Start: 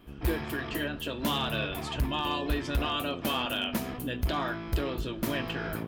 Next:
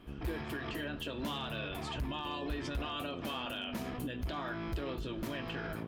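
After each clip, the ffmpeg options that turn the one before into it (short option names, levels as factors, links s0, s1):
-af "highshelf=f=11000:g=-11,alimiter=level_in=2:limit=0.0631:level=0:latency=1:release=114,volume=0.501"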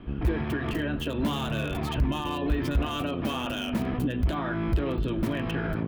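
-filter_complex "[0:a]acrossover=split=330|3700[s0][s1][s2];[s0]acontrast=49[s3];[s2]acrusher=bits=5:dc=4:mix=0:aa=0.000001[s4];[s3][s1][s4]amix=inputs=3:normalize=0,volume=2.24"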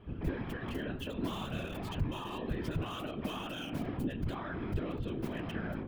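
-af "afftfilt=real='hypot(re,im)*cos(2*PI*random(0))':imag='hypot(re,im)*sin(2*PI*random(1))':win_size=512:overlap=0.75,volume=0.708"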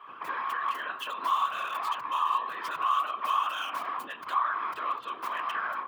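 -filter_complex "[0:a]highpass=f=1100:t=q:w=11,asplit=2[s0][s1];[s1]alimiter=level_in=1.68:limit=0.0631:level=0:latency=1:release=277,volume=0.596,volume=1.06[s2];[s0][s2]amix=inputs=2:normalize=0"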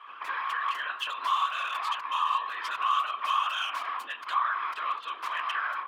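-af "bandpass=f=3200:t=q:w=0.57:csg=0,volume=1.78"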